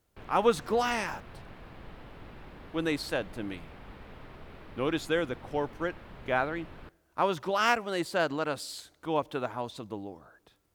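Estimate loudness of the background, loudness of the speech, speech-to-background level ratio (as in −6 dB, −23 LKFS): −49.5 LKFS, −31.0 LKFS, 18.5 dB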